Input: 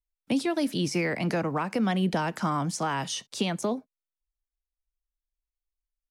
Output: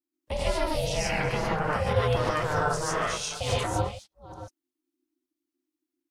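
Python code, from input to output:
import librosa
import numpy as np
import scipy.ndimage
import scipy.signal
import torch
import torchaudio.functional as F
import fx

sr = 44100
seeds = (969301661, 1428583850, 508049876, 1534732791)

y = fx.reverse_delay(x, sr, ms=362, wet_db=-13.5)
y = fx.rev_gated(y, sr, seeds[0], gate_ms=170, shape='rising', drr_db=-6.5)
y = y * np.sin(2.0 * np.pi * 310.0 * np.arange(len(y)) / sr)
y = y * librosa.db_to_amplitude(-2.5)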